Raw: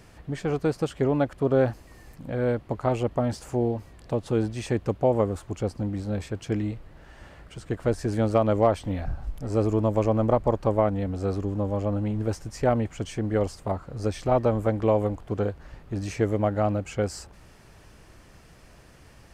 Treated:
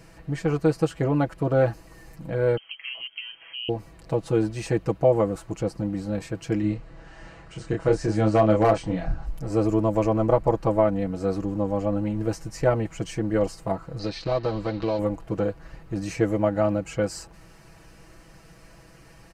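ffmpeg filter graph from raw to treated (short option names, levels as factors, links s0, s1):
-filter_complex "[0:a]asettb=1/sr,asplit=3[s0][s1][s2];[s0]atrim=end=2.574[s3];[s1]atrim=start=2.57:end=3.69,asetpts=PTS-STARTPTS,afade=t=in:d=0.004:c=qsin,afade=t=out:st=1.116:d=0.004:c=qsin,highpass=87,acompressor=threshold=0.00891:ratio=2:attack=3.2:release=140:knee=1:detection=peak,lowpass=f=2800:t=q:w=0.5098,lowpass=f=2800:t=q:w=0.6013,lowpass=f=2800:t=q:w=0.9,lowpass=f=2800:t=q:w=2.563,afreqshift=-3300[s4];[s2]atrim=start=3.686[s5];[s3][s4]acrossfade=d=0.004:c1=hsin:c2=qsin[s6];[s6][s5]acrossfade=d=0.004:c1=qsin:c2=hsin,asettb=1/sr,asplit=3[s7][s8][s9];[s7]atrim=end=6.614[s10];[s8]atrim=start=6.61:end=9.26,asetpts=PTS-STARTPTS,afade=t=in:d=0.004:c=qsin,afade=t=out:st=2.646:d=0.004:c=qsin,lowpass=f=8400:w=0.5412,lowpass=f=8400:w=1.3066,asplit=2[s11][s12];[s12]adelay=28,volume=0.668[s13];[s11][s13]amix=inputs=2:normalize=0,atrim=end_sample=116865,asoftclip=type=hard:threshold=0.282[s14];[s9]atrim=start=9.256[s15];[s10][s14]acrossfade=d=0.004:c1=hsin:c2=qsin[s16];[s16][s15]acrossfade=d=0.004:c1=qsin:c2=hsin,asettb=1/sr,asplit=3[s17][s18][s19];[s17]atrim=end=13.994[s20];[s18]atrim=start=13.99:end=14.99,asetpts=PTS-STARTPTS,afade=t=in:d=0.004:c=qsin,afade=t=out:st=0.996:d=0.004:c=qsin,acompressor=threshold=0.0562:ratio=2:attack=3.2:release=140:knee=1:detection=peak,aeval=exprs='sgn(val(0))*max(abs(val(0))-0.00596,0)':c=same,lowpass=f=4200:t=q:w=5.2[s21];[s19]atrim=start=14.986[s22];[s20][s21]acrossfade=d=0.004:c1=hsin:c2=qsin[s23];[s23][s22]acrossfade=d=0.004:c1=qsin:c2=hsin,bandreject=f=3400:w=11,aecho=1:1:6.1:0.72"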